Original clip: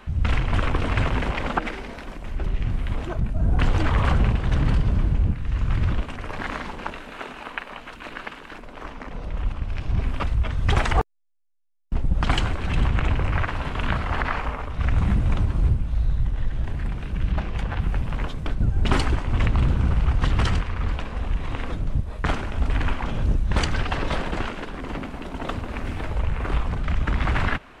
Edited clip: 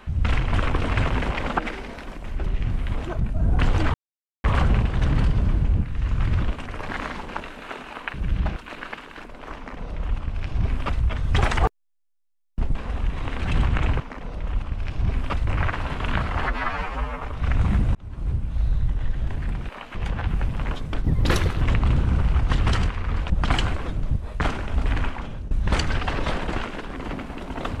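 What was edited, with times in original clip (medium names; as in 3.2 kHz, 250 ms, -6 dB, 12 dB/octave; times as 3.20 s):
3.94 s: insert silence 0.50 s
7.64–7.90 s: swap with 17.06–17.48 s
8.90–10.37 s: copy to 13.22 s
12.09–12.61 s: swap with 21.02–21.66 s
14.20–14.58 s: stretch 2×
15.32–15.98 s: fade in
18.57–19.34 s: speed 133%
22.78–23.35 s: fade out, to -17 dB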